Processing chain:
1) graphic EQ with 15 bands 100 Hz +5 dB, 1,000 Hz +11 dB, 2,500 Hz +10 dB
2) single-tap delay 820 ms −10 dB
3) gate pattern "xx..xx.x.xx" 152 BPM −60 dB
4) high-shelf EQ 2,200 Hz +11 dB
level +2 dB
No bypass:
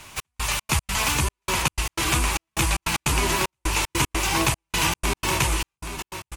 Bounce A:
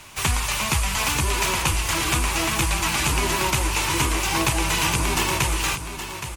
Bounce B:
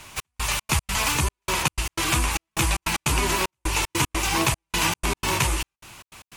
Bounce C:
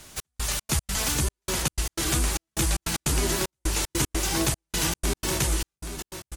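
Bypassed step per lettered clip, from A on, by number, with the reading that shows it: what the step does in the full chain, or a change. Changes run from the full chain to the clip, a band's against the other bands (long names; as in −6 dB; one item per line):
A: 3, change in crest factor −2.0 dB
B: 2, change in momentary loudness spread −3 LU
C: 1, 1 kHz band −7.0 dB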